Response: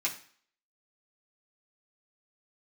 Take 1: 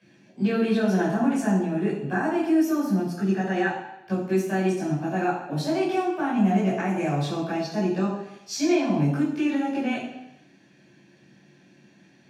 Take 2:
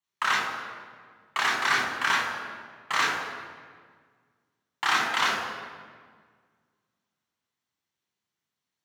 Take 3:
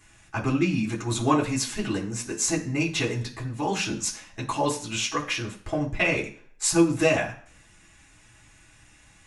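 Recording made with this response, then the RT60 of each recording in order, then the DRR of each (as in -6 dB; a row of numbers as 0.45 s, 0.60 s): 3; 0.80 s, 1.8 s, 0.50 s; -7.5 dB, -3.0 dB, -4.5 dB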